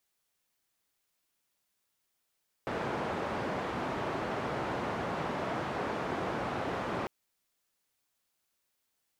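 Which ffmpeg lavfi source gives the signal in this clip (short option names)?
-f lavfi -i "anoisesrc=c=white:d=4.4:r=44100:seed=1,highpass=f=95,lowpass=f=960,volume=-16.1dB"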